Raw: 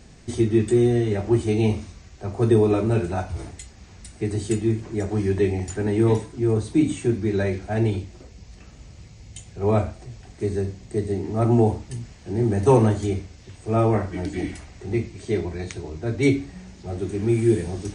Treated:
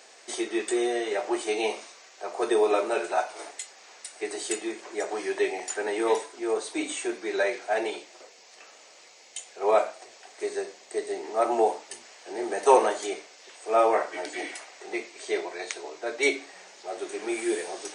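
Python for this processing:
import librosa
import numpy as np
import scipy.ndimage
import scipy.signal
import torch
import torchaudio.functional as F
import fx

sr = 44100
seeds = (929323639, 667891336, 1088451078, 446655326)

y = scipy.signal.sosfilt(scipy.signal.butter(4, 500.0, 'highpass', fs=sr, output='sos'), x)
y = y * librosa.db_to_amplitude(4.0)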